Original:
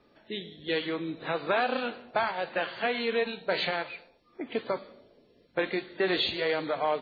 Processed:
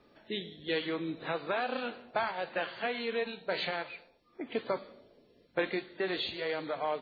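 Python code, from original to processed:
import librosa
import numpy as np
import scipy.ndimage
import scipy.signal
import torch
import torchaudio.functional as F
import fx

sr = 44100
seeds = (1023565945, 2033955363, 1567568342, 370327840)

y = fx.rider(x, sr, range_db=4, speed_s=0.5)
y = F.gain(torch.from_numpy(y), -4.0).numpy()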